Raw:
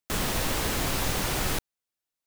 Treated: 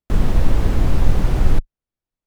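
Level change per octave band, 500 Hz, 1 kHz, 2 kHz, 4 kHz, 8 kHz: +4.0 dB, +0.5 dB, -3.5 dB, -7.5 dB, -11.5 dB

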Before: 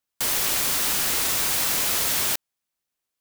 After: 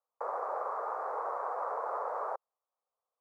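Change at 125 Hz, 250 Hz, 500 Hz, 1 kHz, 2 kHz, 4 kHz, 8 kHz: under -40 dB, under -20 dB, +0.5 dB, +1.0 dB, -19.5 dB, under -40 dB, under -40 dB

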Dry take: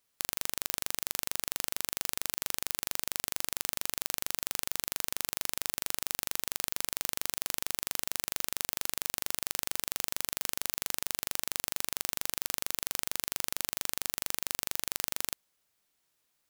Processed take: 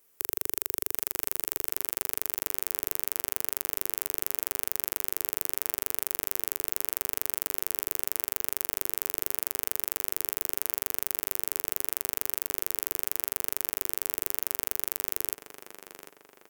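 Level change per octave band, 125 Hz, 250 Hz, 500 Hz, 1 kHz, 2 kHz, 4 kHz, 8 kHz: -4.0 dB, +2.5 dB, +5.0 dB, -0.5 dB, -2.0 dB, -5.0 dB, +0.5 dB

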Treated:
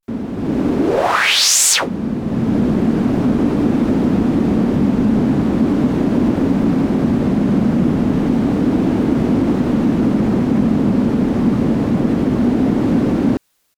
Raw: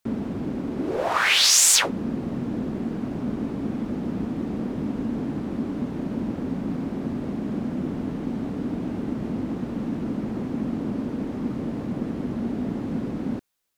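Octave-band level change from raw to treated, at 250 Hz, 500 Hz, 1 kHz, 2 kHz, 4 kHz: +13.0 dB, +12.5 dB, +9.5 dB, +6.0 dB, +4.5 dB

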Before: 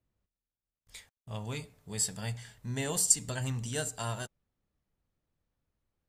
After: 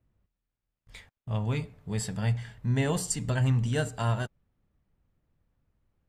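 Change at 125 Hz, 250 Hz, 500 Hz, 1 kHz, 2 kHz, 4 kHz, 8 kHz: +10.0 dB, +8.5 dB, +6.0 dB, +5.5 dB, +4.5 dB, -1.0 dB, -7.5 dB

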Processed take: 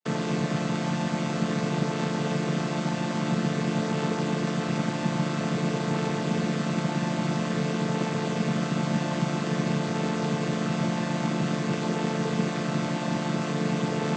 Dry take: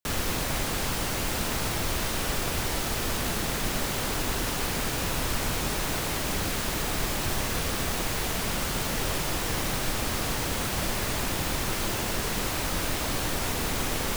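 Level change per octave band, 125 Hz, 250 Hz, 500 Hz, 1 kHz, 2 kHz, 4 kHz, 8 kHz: +5.5 dB, +8.5 dB, +3.5 dB, +0.5 dB, -2.5 dB, -6.0 dB, -11.0 dB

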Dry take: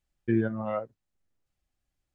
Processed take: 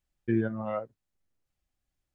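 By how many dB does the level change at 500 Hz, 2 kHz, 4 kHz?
-1.5 dB, -1.5 dB, no reading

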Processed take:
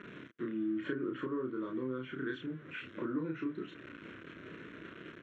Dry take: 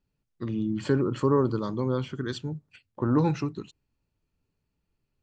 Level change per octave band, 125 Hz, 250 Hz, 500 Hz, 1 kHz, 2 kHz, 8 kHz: -19.0 dB, -8.5 dB, -11.5 dB, -13.5 dB, -0.5 dB, no reading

